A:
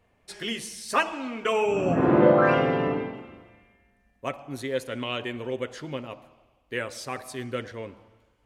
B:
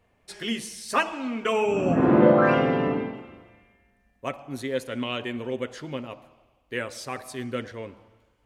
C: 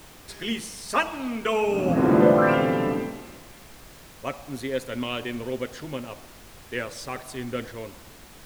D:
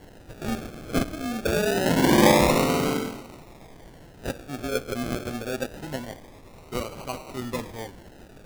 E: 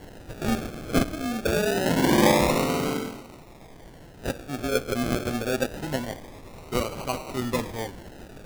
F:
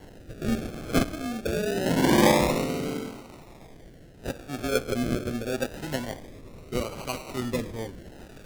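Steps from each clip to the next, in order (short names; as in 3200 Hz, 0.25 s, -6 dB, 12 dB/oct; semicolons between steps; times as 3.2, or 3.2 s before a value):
dynamic EQ 230 Hz, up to +6 dB, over -41 dBFS, Q 3.3
added noise pink -47 dBFS
decimation with a swept rate 36×, swing 60% 0.25 Hz
vocal rider within 4 dB 2 s
rotary speaker horn 0.8 Hz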